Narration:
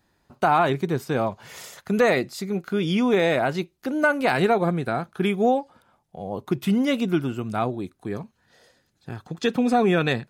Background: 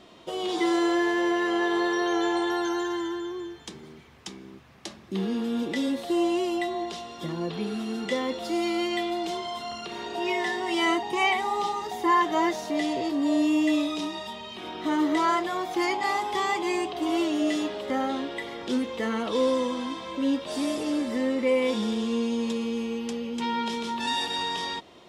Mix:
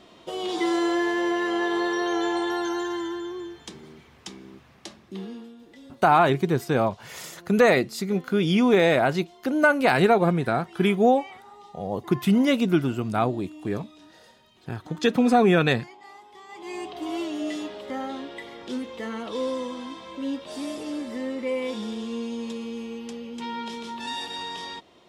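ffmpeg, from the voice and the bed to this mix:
-filter_complex "[0:a]adelay=5600,volume=1.19[s0];[1:a]volume=6.31,afade=t=out:st=4.65:d=0.91:silence=0.0944061,afade=t=in:st=16.48:d=0.41:silence=0.158489[s1];[s0][s1]amix=inputs=2:normalize=0"

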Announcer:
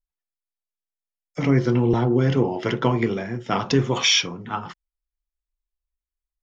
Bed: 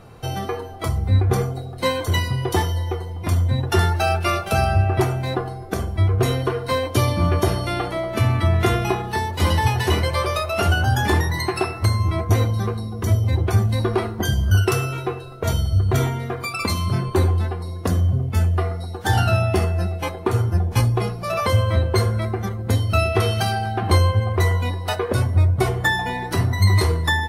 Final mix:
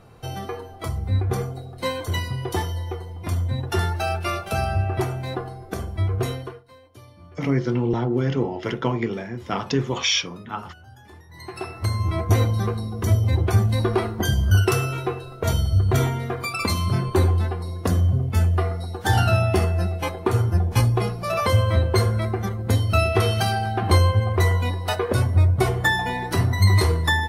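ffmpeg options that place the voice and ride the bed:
-filter_complex "[0:a]adelay=6000,volume=0.708[s0];[1:a]volume=13.3,afade=t=out:st=6.2:d=0.44:silence=0.0707946,afade=t=in:st=11.28:d=1.05:silence=0.0421697[s1];[s0][s1]amix=inputs=2:normalize=0"

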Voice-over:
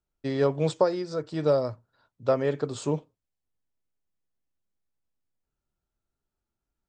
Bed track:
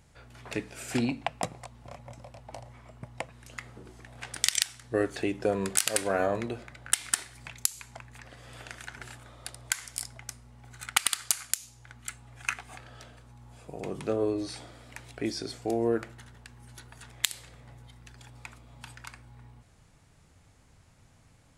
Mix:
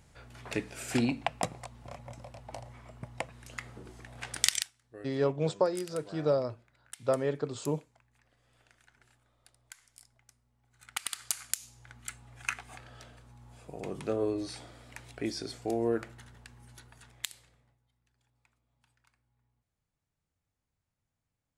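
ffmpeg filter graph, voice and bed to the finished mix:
-filter_complex "[0:a]adelay=4800,volume=0.596[s0];[1:a]volume=8.41,afade=t=out:st=4.47:d=0.24:silence=0.0891251,afade=t=in:st=10.71:d=0.93:silence=0.11885,afade=t=out:st=16.46:d=1.32:silence=0.0668344[s1];[s0][s1]amix=inputs=2:normalize=0"

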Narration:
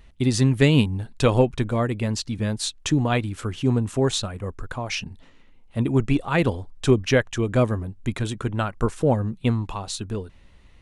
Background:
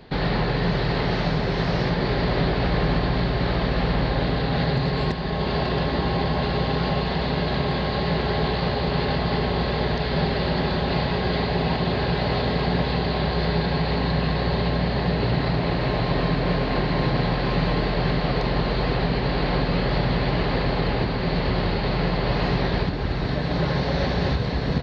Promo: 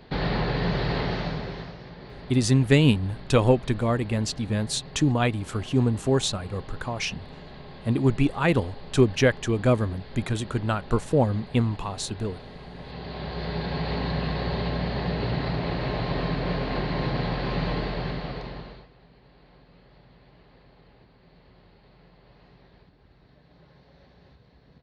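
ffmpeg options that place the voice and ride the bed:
-filter_complex "[0:a]adelay=2100,volume=0.891[s0];[1:a]volume=3.98,afade=t=out:st=0.95:d=0.81:silence=0.141254,afade=t=in:st=12.75:d=1.16:silence=0.177828,afade=t=out:st=17.72:d=1.16:silence=0.0421697[s1];[s0][s1]amix=inputs=2:normalize=0"

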